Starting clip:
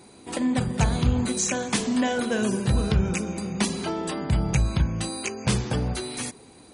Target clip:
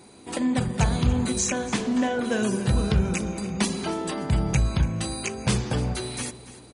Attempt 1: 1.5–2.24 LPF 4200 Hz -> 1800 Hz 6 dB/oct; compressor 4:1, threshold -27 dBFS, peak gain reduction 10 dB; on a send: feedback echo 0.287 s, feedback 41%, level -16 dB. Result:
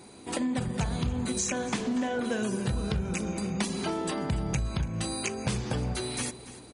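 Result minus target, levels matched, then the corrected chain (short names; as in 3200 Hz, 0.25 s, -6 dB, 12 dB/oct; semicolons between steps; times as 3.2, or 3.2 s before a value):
compressor: peak gain reduction +10 dB
1.5–2.24 LPF 4200 Hz -> 1800 Hz 6 dB/oct; on a send: feedback echo 0.287 s, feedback 41%, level -16 dB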